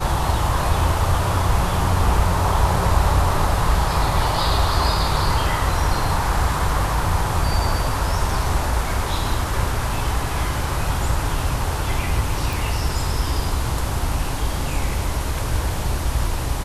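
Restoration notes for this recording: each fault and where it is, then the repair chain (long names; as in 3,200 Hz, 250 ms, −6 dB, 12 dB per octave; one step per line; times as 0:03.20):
0:12.53: click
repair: click removal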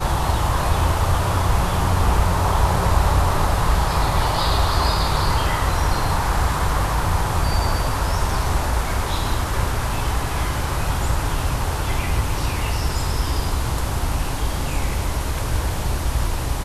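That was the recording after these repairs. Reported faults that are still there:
none of them is left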